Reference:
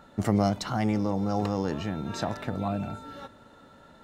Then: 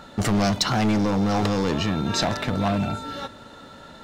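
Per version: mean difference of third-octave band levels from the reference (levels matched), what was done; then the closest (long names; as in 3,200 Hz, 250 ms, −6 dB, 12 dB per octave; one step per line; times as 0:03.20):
4.5 dB: hard clipping −26 dBFS, distortion −7 dB
parametric band 4,400 Hz +6.5 dB 1.7 octaves
level +8.5 dB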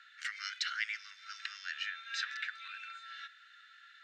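20.5 dB: Butterworth high-pass 1,500 Hz 72 dB per octave
high-frequency loss of the air 170 metres
level +7.5 dB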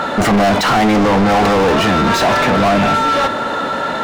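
9.0 dB: mid-hump overdrive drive 42 dB, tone 2,300 Hz, clips at −9.5 dBFS
level +4.5 dB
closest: first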